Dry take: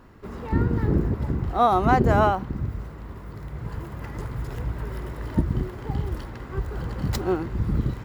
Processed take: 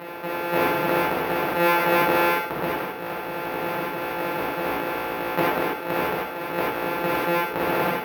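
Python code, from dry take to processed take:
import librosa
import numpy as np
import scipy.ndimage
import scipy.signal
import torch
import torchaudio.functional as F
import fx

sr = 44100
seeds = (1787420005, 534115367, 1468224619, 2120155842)

y = np.r_[np.sort(x[:len(x) // 256 * 256].reshape(-1, 256), axis=1).ravel(), x[len(x) // 256 * 256:]]
y = scipy.signal.sosfilt(scipy.signal.butter(2, 480.0, 'highpass', fs=sr, output='sos'), y)
y = fx.dereverb_blind(y, sr, rt60_s=0.88)
y = scipy.signal.sosfilt(scipy.signal.butter(2, 2100.0, 'lowpass', fs=sr, output='sos'), y)
y = y + 10.0 ** (-13.0 / 20.0) * np.pad(y, (int(74 * sr / 1000.0), 0))[:len(y)]
y = fx.rev_gated(y, sr, seeds[0], gate_ms=120, shape='flat', drr_db=-7.0)
y = np.repeat(scipy.signal.resample_poly(y, 1, 3), 3)[:len(y)]
y = fx.env_flatten(y, sr, amount_pct=50)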